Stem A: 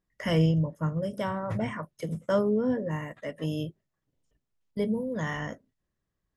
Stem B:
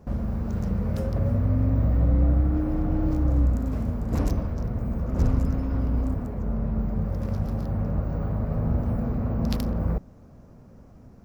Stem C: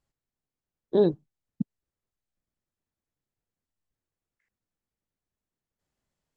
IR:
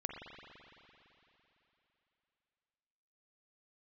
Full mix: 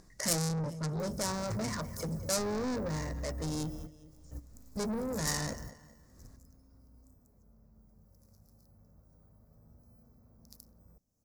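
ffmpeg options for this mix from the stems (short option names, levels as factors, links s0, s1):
-filter_complex "[0:a]acompressor=mode=upward:threshold=0.00631:ratio=2.5,asoftclip=type=tanh:threshold=0.0841,adynamicsmooth=sensitivity=6:basefreq=2400,volume=1.19,asplit=3[s0][s1][s2];[s1]volume=0.133[s3];[1:a]acompressor=mode=upward:threshold=0.0562:ratio=2.5,adelay=1000,volume=0.133[s4];[2:a]acompressor=threshold=0.0447:ratio=3,volume=0.251[s5];[s2]apad=whole_len=540175[s6];[s4][s6]sidechaingate=range=0.126:threshold=0.00178:ratio=16:detection=peak[s7];[s3]aecho=0:1:203|406|609|812|1015:1|0.34|0.116|0.0393|0.0134[s8];[s0][s7][s5][s8]amix=inputs=4:normalize=0,highshelf=f=4400:g=-4,asoftclip=type=tanh:threshold=0.0266,aexciter=amount=14.4:drive=8:freq=4800"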